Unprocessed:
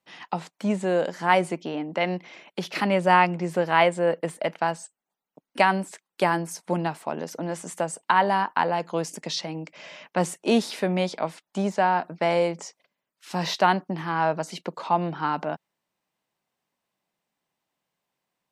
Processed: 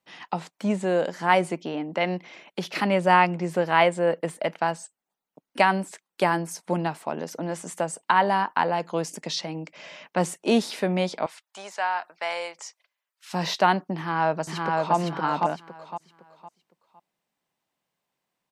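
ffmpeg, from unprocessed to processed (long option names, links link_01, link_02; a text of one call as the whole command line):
ffmpeg -i in.wav -filter_complex "[0:a]asettb=1/sr,asplit=3[link_01][link_02][link_03];[link_01]atrim=end=11.264[link_04];[link_02]atrim=start=11.26:end=13.33,asetpts=PTS-STARTPTS,afade=type=in:duration=0.004:curve=qsin,afade=type=out:start_time=2.066:duration=0.004:curve=qsin,highpass=1000[link_05];[link_03]atrim=start=13.326[link_06];[link_04][link_05]acrossfade=duration=0.004:curve1=hsin:curve2=qsin[link_07];[link_07][link_06]acrossfade=duration=0.004:curve1=qsin:curve2=hsin,asplit=2[link_08][link_09];[link_09]afade=type=in:start_time=13.96:duration=0.01,afade=type=out:start_time=14.95:duration=0.01,aecho=0:1:510|1020|1530|2040:0.794328|0.238298|0.0714895|0.0214469[link_10];[link_08][link_10]amix=inputs=2:normalize=0" out.wav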